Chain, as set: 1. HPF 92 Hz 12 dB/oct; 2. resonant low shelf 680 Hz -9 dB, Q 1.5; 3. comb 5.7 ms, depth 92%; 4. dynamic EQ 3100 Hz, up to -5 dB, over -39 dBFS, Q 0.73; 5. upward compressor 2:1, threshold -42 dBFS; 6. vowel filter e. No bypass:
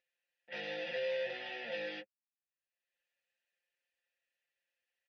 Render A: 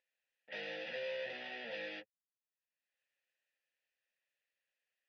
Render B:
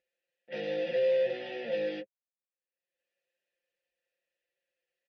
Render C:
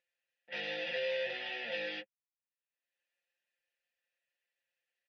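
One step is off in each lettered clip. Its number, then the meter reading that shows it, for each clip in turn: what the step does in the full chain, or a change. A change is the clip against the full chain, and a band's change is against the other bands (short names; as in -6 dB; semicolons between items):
3, 500 Hz band -2.5 dB; 2, 2 kHz band -10.5 dB; 4, loudness change +2.5 LU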